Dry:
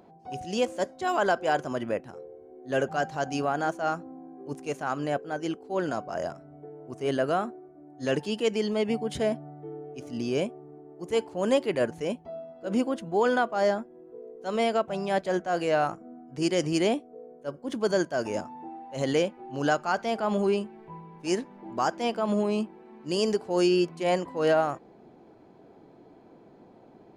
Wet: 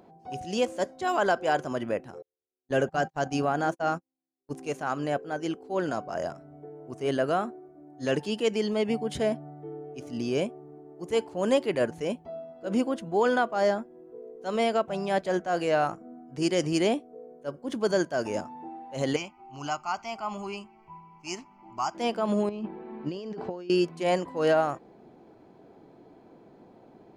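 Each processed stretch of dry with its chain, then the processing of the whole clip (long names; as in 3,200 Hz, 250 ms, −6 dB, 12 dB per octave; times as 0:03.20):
0:02.22–0:04.51: noise gate −36 dBFS, range −49 dB + low-shelf EQ 270 Hz +4.5 dB
0:19.16–0:21.95: parametric band 210 Hz −9 dB 1.6 octaves + phaser with its sweep stopped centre 2,500 Hz, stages 8
0:22.49–0:23.70: compressor whose output falls as the input rises −35 dBFS + high-frequency loss of the air 190 metres + one half of a high-frequency compander decoder only
whole clip: no processing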